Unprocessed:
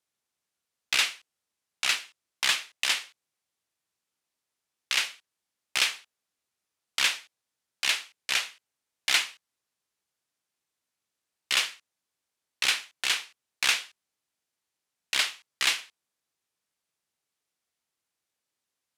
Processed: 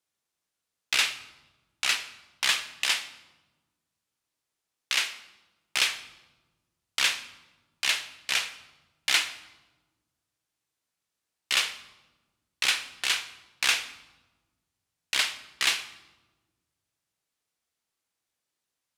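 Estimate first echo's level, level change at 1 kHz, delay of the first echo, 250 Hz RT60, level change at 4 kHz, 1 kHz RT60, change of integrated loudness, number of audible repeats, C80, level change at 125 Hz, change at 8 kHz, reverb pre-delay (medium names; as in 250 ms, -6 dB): no echo, +0.5 dB, no echo, 1.8 s, +0.5 dB, 1.1 s, +0.5 dB, no echo, 15.5 dB, no reading, +0.5 dB, 6 ms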